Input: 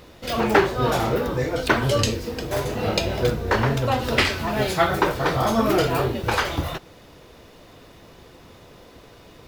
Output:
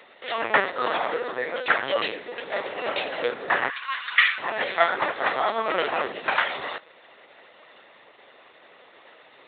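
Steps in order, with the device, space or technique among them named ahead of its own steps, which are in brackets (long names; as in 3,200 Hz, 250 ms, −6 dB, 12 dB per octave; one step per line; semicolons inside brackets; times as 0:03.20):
0:03.69–0:04.39: Butterworth high-pass 1,000 Hz 72 dB per octave
talking toy (linear-prediction vocoder at 8 kHz pitch kept; high-pass filter 570 Hz 12 dB per octave; parametric band 1,900 Hz +7 dB 0.34 octaves)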